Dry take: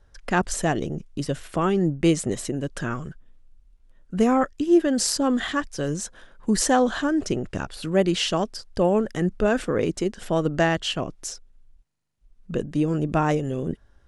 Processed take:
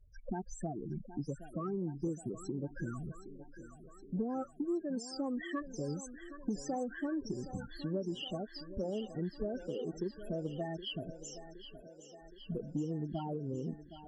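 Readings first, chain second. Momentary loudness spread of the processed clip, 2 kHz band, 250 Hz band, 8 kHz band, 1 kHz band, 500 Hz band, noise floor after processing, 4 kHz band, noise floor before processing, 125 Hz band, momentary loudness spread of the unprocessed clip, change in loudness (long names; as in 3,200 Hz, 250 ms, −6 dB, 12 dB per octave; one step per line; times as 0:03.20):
14 LU, −20.5 dB, −14.5 dB, −21.5 dB, −18.5 dB, −16.0 dB, −56 dBFS, −16.5 dB, −58 dBFS, −13.0 dB, 11 LU, −15.5 dB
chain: downward compressor 8 to 1, threshold −29 dBFS, peak gain reduction 16 dB
spectral peaks only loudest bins 8
feedback echo with a high-pass in the loop 768 ms, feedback 70%, high-pass 220 Hz, level −11.5 dB
harmonic generator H 2 −42 dB, 3 −26 dB, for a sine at −20.5 dBFS
level −3 dB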